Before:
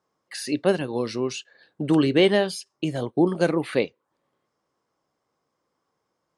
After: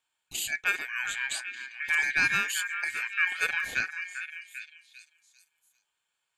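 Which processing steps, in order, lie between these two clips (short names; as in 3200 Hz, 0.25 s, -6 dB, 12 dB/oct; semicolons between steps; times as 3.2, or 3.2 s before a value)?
resonant high shelf 4300 Hz +7 dB, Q 3; ring modulator 2000 Hz; delay with a stepping band-pass 0.396 s, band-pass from 1500 Hz, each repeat 0.7 oct, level -7 dB; gain -4.5 dB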